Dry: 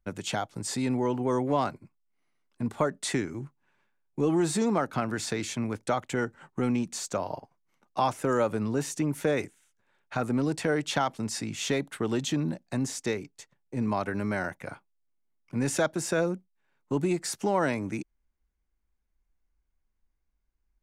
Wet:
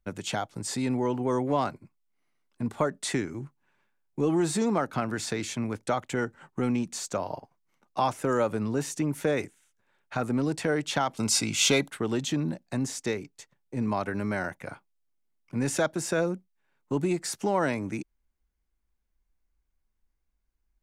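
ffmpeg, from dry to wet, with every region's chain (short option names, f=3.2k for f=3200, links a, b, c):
-filter_complex "[0:a]asettb=1/sr,asplit=3[a][b][c];[a]atrim=end=11.174[d];[b]atrim=start=11.17:end=11.9,asetpts=PTS-STARTPTS,afade=t=in:d=0.004:c=qsin,afade=t=out:st=0.726:d=0.004:c=qsin,acontrast=74,asuperstop=centerf=1800:order=12:qfactor=6.2,tiltshelf=f=1.1k:g=-4[e];[c]atrim=start=11.896[f];[d][e]acrossfade=d=0.004:c1=hsin:c2=qsin[g];[g][f]acrossfade=d=0.004:c1=qsin:c2=hsin"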